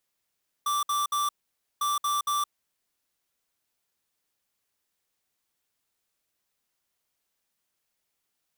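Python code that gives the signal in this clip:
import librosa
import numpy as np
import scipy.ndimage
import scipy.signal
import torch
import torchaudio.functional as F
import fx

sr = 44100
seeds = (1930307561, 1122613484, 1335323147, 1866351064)

y = fx.beep_pattern(sr, wave='square', hz=1170.0, on_s=0.17, off_s=0.06, beeps=3, pause_s=0.52, groups=2, level_db=-26.5)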